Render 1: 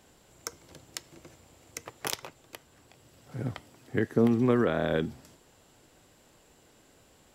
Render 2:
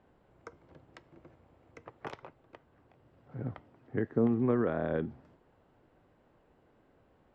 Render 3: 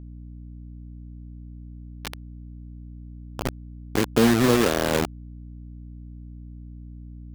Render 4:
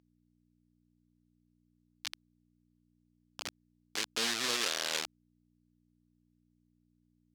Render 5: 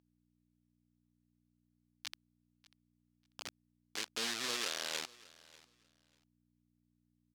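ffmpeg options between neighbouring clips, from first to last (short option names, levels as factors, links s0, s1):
-af "lowpass=1500,volume=0.631"
-af "acrusher=bits=4:mix=0:aa=0.000001,aeval=exprs='val(0)+0.00447*(sin(2*PI*60*n/s)+sin(2*PI*2*60*n/s)/2+sin(2*PI*3*60*n/s)/3+sin(2*PI*4*60*n/s)/4+sin(2*PI*5*60*n/s)/5)':c=same,volume=2.66"
-af "bandpass=f=4700:t=q:w=1:csg=0"
-af "aecho=1:1:592|1184:0.0794|0.0151,volume=0.562"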